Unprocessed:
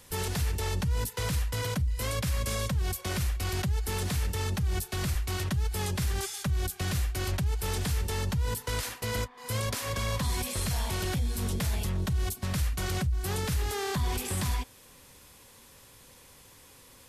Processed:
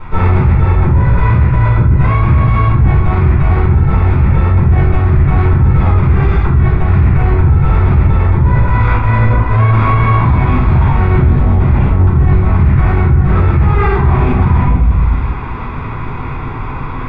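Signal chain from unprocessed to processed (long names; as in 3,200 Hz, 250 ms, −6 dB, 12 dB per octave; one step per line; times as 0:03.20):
lower of the sound and its delayed copy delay 0.85 ms
in parallel at −2.5 dB: soft clipping −37 dBFS, distortion −7 dB
on the sum: low-pass filter 1,900 Hz 24 dB per octave
rectangular room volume 230 cubic metres, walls mixed, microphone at 4.5 metres
reversed playback
downward compressor 6 to 1, threshold −24 dBFS, peak gain reduction 16.5 dB
reversed playback
boost into a limiter +20 dB
level −1 dB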